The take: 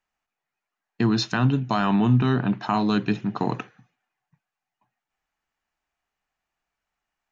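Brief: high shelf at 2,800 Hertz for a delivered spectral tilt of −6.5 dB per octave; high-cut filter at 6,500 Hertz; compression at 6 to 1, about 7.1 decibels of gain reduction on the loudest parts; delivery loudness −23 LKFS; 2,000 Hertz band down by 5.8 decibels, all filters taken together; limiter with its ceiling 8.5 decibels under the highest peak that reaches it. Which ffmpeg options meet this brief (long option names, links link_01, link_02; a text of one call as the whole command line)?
ffmpeg -i in.wav -af "lowpass=6500,equalizer=frequency=2000:width_type=o:gain=-7,highshelf=frequency=2800:gain=-4,acompressor=threshold=-22dB:ratio=6,volume=8dB,alimiter=limit=-13dB:level=0:latency=1" out.wav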